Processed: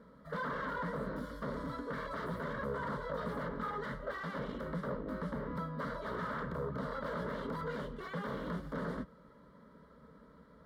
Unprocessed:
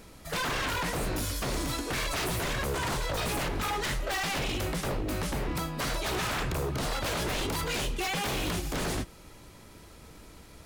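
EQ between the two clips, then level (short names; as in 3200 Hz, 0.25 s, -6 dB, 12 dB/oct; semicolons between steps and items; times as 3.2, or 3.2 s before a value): HPF 90 Hz 12 dB/oct; air absorption 490 m; fixed phaser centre 510 Hz, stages 8; -1.0 dB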